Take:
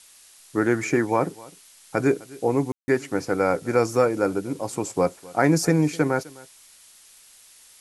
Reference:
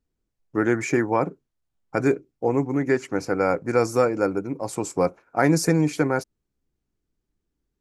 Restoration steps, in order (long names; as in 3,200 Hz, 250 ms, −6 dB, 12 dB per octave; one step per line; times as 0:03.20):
ambience match 0:02.72–0:02.88
broadband denoise 27 dB, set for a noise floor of −52 dBFS
echo removal 256 ms −22 dB